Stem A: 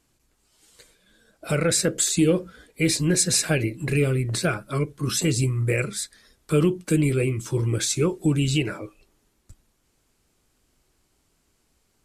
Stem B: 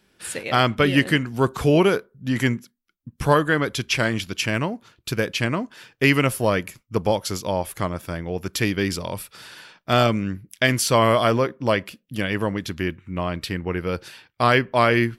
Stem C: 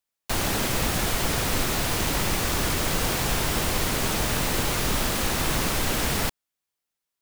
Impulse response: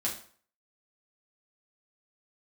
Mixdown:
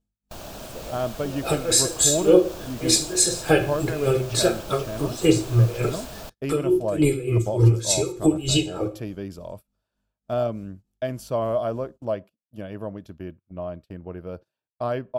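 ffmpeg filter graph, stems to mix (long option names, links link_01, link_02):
-filter_complex "[0:a]aecho=1:1:2.4:0.9,aeval=exprs='val(0)+0.00316*(sin(2*PI*50*n/s)+sin(2*PI*2*50*n/s)/2+sin(2*PI*3*50*n/s)/3+sin(2*PI*4*50*n/s)/4+sin(2*PI*5*50*n/s)/5)':channel_layout=same,aeval=exprs='val(0)*pow(10,-24*(0.5-0.5*cos(2*PI*3.4*n/s))/20)':channel_layout=same,volume=2.5dB,asplit=2[link_01][link_02];[link_02]volume=-4.5dB[link_03];[1:a]equalizer=frequency=4300:width=0.32:gain=-11.5,adelay=400,volume=-9.5dB[link_04];[2:a]volume=-14dB[link_05];[link_01][link_05]amix=inputs=2:normalize=0,agate=range=-11dB:threshold=-43dB:ratio=16:detection=peak,alimiter=limit=-12.5dB:level=0:latency=1:release=181,volume=0dB[link_06];[3:a]atrim=start_sample=2205[link_07];[link_03][link_07]afir=irnorm=-1:irlink=0[link_08];[link_04][link_06][link_08]amix=inputs=3:normalize=0,agate=range=-25dB:threshold=-42dB:ratio=16:detection=peak,equalizer=frequency=630:width_type=o:width=0.33:gain=11,equalizer=frequency=2000:width_type=o:width=0.33:gain=-10,equalizer=frequency=10000:width_type=o:width=0.33:gain=-6"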